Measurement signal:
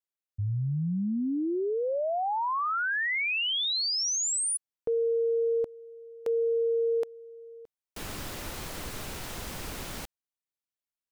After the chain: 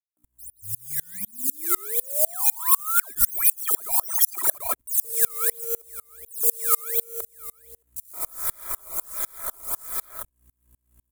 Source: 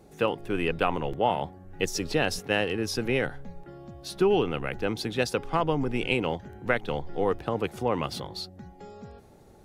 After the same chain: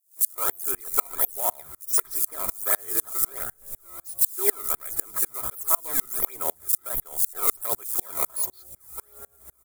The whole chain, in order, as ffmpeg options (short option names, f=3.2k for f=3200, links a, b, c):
-filter_complex "[0:a]acrusher=samples=15:mix=1:aa=0.000001:lfo=1:lforange=24:lforate=1.4,equalizer=f=400:t=o:w=0.33:g=6,equalizer=f=800:t=o:w=0.33:g=-6,equalizer=f=1.25k:t=o:w=0.33:g=10,equalizer=f=5k:t=o:w=0.33:g=8,aeval=exprs='val(0)+0.00398*(sin(2*PI*60*n/s)+sin(2*PI*2*60*n/s)/2+sin(2*PI*3*60*n/s)/3+sin(2*PI*4*60*n/s)/4+sin(2*PI*5*60*n/s)/5)':c=same,lowshelf=f=470:t=q:w=1.5:g=-9,acrossover=split=220|4500[a][b][c];[b]adelay=170[d];[a]adelay=240[e];[e][d][c]amix=inputs=3:normalize=0,acontrast=21,asuperstop=centerf=2800:order=20:qfactor=4.7,acrusher=bits=3:mode=log:mix=0:aa=0.000001,aecho=1:1:3:0.5,aexciter=amount=11.1:drive=6.5:freq=7.4k,alimiter=level_in=0.5dB:limit=-1dB:release=50:level=0:latency=1,aeval=exprs='val(0)*pow(10,-33*if(lt(mod(-4*n/s,1),2*abs(-4)/1000),1-mod(-4*n/s,1)/(2*abs(-4)/1000),(mod(-4*n/s,1)-2*abs(-4)/1000)/(1-2*abs(-4)/1000))/20)':c=same,volume=-1.5dB"